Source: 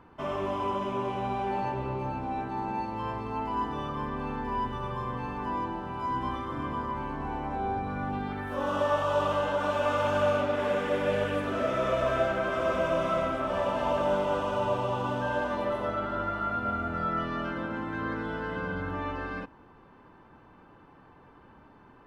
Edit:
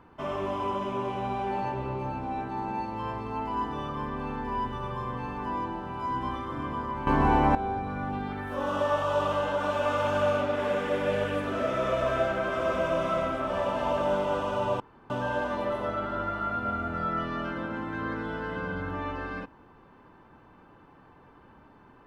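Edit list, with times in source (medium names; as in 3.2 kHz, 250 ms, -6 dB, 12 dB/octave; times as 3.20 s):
7.07–7.55 s: gain +12 dB
14.80–15.10 s: room tone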